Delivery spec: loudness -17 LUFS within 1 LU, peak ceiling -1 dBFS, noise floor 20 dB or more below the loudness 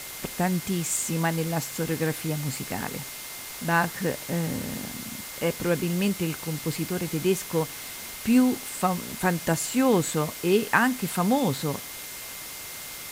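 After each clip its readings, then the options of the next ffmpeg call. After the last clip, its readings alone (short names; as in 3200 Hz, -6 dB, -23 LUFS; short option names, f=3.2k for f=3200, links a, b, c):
steady tone 2100 Hz; tone level -47 dBFS; noise floor -39 dBFS; noise floor target -47 dBFS; loudness -27.0 LUFS; peak -6.5 dBFS; loudness target -17.0 LUFS
-> -af "bandreject=f=2.1k:w=30"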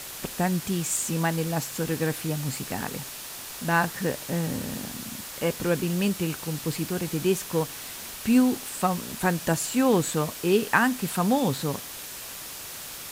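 steady tone none; noise floor -39 dBFS; noise floor target -47 dBFS
-> -af "afftdn=nr=8:nf=-39"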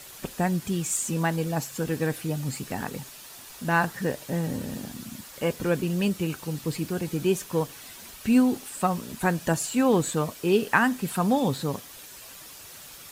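noise floor -45 dBFS; noise floor target -47 dBFS
-> -af "afftdn=nr=6:nf=-45"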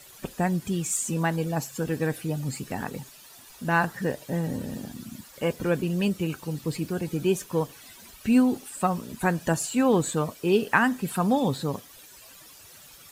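noise floor -50 dBFS; loudness -27.0 LUFS; peak -6.5 dBFS; loudness target -17.0 LUFS
-> -af "volume=10dB,alimiter=limit=-1dB:level=0:latency=1"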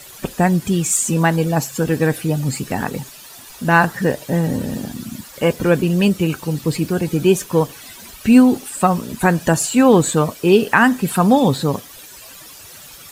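loudness -17.0 LUFS; peak -1.0 dBFS; noise floor -40 dBFS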